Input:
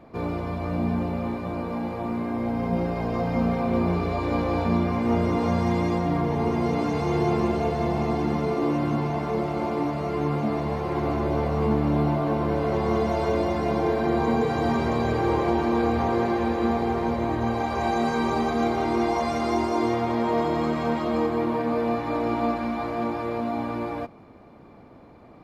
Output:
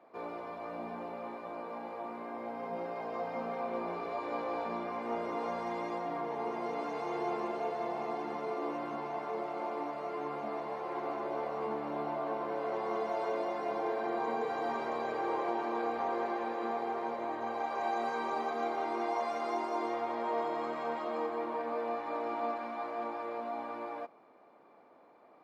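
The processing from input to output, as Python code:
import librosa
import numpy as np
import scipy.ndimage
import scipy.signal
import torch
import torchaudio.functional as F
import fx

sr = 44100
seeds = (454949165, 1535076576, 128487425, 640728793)

y = scipy.signal.sosfilt(scipy.signal.butter(2, 550.0, 'highpass', fs=sr, output='sos'), x)
y = fx.high_shelf(y, sr, hz=2400.0, db=-10.5)
y = y * 10.0 ** (-5.0 / 20.0)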